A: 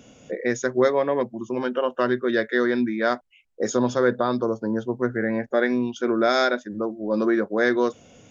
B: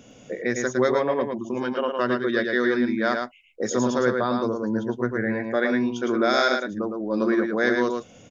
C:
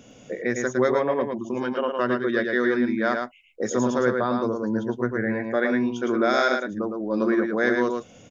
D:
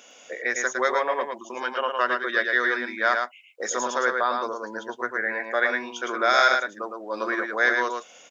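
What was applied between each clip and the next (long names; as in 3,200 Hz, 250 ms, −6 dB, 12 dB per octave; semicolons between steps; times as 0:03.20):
dynamic equaliser 510 Hz, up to −3 dB, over −30 dBFS, Q 0.83; single-tap delay 110 ms −4.5 dB
dynamic equaliser 4,500 Hz, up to −7 dB, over −48 dBFS, Q 1.7
high-pass filter 850 Hz 12 dB per octave; level +5.5 dB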